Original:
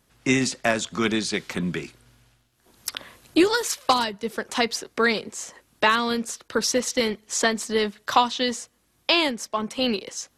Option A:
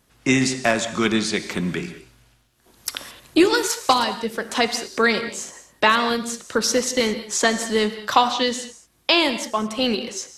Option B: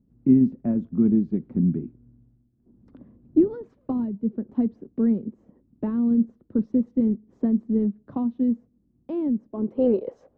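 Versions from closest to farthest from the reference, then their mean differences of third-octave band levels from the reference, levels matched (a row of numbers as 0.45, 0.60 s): A, B; 3.5, 17.5 dB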